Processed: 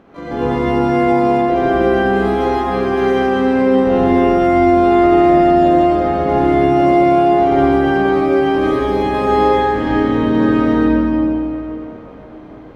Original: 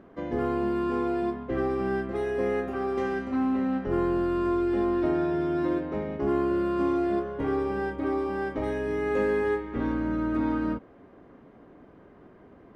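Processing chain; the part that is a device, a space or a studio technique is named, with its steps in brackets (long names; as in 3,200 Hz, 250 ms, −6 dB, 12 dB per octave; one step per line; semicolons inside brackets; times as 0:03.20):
shimmer-style reverb (pitch-shifted copies added +12 semitones −7 dB; convolution reverb RT60 3.6 s, pre-delay 63 ms, DRR −7.5 dB)
level +3 dB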